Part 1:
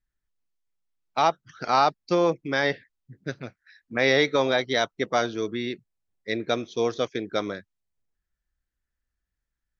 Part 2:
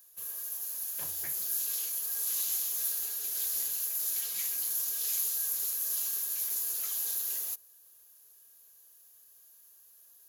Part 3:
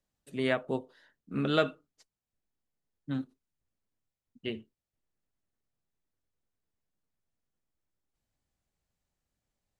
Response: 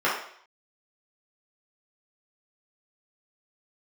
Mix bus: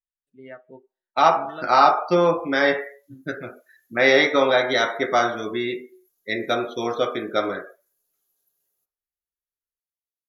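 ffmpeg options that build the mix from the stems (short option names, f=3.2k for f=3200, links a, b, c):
-filter_complex "[0:a]volume=0.5dB,asplit=2[a][b];[b]volume=-14dB[c];[1:a]tiltshelf=f=710:g=9,adelay=1300,volume=-10dB,asplit=2[d][e];[e]volume=-20dB[f];[2:a]volume=-12dB,asplit=2[g][h];[h]volume=-22dB[i];[3:a]atrim=start_sample=2205[j];[c][f][i]amix=inputs=3:normalize=0[k];[k][j]afir=irnorm=-1:irlink=0[l];[a][d][g][l]amix=inputs=4:normalize=0,afftdn=nr=23:nf=-39"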